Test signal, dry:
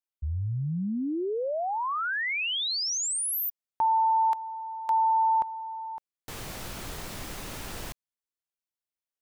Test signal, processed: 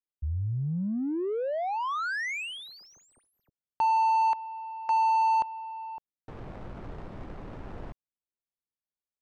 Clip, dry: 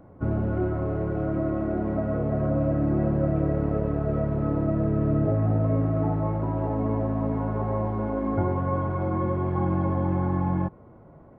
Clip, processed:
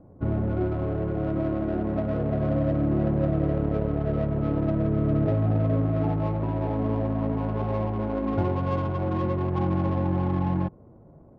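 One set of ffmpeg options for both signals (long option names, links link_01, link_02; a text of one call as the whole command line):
ffmpeg -i in.wav -af "adynamicsmooth=sensitivity=2.5:basefreq=750" out.wav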